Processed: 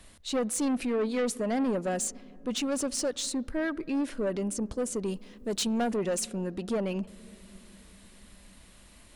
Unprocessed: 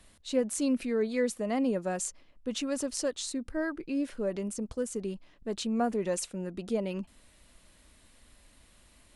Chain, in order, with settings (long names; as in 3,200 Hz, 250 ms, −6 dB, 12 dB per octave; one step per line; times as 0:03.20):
0:05.06–0:05.84: high-shelf EQ 4,000 Hz +9.5 dB
soft clipping −29 dBFS, distortion −11 dB
on a send: convolution reverb RT60 3.6 s, pre-delay 47 ms, DRR 24 dB
on the sum: level +5 dB